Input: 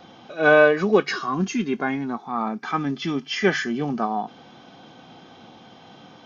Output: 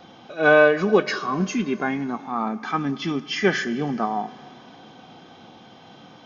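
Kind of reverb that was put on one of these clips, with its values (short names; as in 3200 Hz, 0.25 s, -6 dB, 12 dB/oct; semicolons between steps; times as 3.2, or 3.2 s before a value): Schroeder reverb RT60 3 s, combs from 32 ms, DRR 16.5 dB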